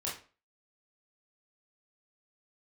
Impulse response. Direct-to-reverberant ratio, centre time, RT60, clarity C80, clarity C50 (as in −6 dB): −6.0 dB, 34 ms, 0.40 s, 12.5 dB, 6.0 dB